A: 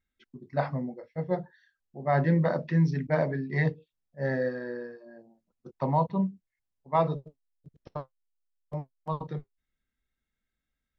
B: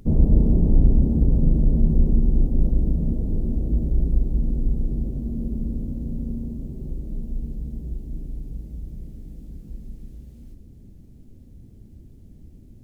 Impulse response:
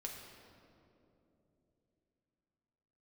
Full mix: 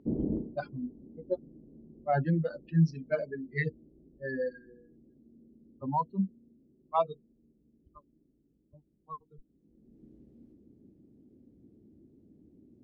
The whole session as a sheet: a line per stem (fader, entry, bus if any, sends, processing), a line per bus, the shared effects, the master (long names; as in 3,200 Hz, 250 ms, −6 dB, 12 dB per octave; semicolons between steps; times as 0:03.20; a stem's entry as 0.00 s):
+1.5 dB, 0.00 s, no send, spectral dynamics exaggerated over time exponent 3; low-pass that shuts in the quiet parts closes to 960 Hz, open at −30.5 dBFS
+1.0 dB, 0.00 s, no send, spectral tilt +1.5 dB per octave; gain into a clipping stage and back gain 11 dB; resonant band-pass 320 Hz, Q 1.9; automatic ducking −21 dB, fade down 0.20 s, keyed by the first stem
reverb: not used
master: no processing